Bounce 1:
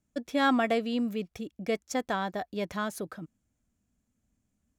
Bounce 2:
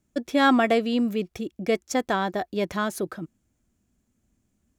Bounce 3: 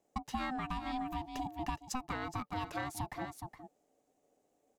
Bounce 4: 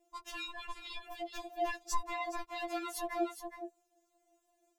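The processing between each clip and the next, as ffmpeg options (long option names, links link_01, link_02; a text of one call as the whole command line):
ffmpeg -i in.wav -af "equalizer=frequency=360:width=6.4:gain=8,volume=5.5dB" out.wav
ffmpeg -i in.wav -af "aeval=exprs='val(0)*sin(2*PI*510*n/s)':channel_layout=same,aecho=1:1:417:0.251,acompressor=threshold=-32dB:ratio=10,volume=-2dB" out.wav
ffmpeg -i in.wav -af "afftfilt=real='re*4*eq(mod(b,16),0)':imag='im*4*eq(mod(b,16),0)':win_size=2048:overlap=0.75,volume=5.5dB" out.wav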